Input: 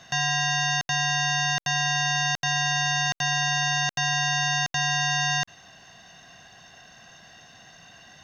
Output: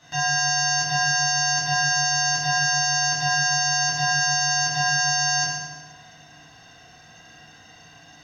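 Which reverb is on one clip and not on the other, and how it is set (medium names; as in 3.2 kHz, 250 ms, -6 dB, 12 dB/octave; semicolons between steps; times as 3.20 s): FDN reverb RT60 1.3 s, low-frequency decay 1.5×, high-frequency decay 0.8×, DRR -10 dB; trim -9 dB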